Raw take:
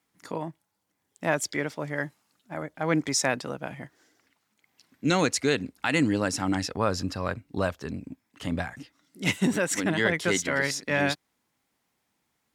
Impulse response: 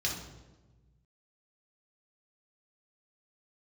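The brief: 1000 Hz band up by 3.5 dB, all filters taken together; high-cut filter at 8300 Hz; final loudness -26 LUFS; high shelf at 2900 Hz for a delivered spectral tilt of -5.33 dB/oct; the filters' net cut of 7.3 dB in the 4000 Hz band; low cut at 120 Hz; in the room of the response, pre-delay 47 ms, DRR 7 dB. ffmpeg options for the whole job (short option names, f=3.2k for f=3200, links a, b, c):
-filter_complex "[0:a]highpass=120,lowpass=8.3k,equalizer=f=1k:t=o:g=5.5,highshelf=f=2.9k:g=-3,equalizer=f=4k:t=o:g=-7.5,asplit=2[a][b];[1:a]atrim=start_sample=2205,adelay=47[c];[b][c]afir=irnorm=-1:irlink=0,volume=-12.5dB[d];[a][d]amix=inputs=2:normalize=0,volume=1dB"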